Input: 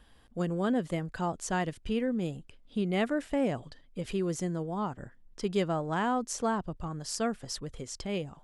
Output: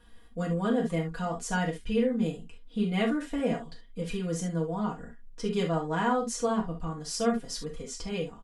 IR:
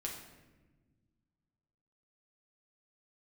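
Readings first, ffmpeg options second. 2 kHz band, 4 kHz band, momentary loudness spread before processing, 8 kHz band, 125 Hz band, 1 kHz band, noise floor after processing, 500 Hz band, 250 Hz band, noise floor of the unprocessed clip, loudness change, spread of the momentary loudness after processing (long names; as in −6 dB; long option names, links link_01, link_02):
+2.0 dB, +2.0 dB, 10 LU, +1.0 dB, +2.5 dB, +1.0 dB, −50 dBFS, +2.0 dB, +2.0 dB, −59 dBFS, +2.0 dB, 11 LU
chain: -filter_complex "[0:a]aecho=1:1:4.2:0.95[link_01];[1:a]atrim=start_sample=2205,atrim=end_sample=3528[link_02];[link_01][link_02]afir=irnorm=-1:irlink=0"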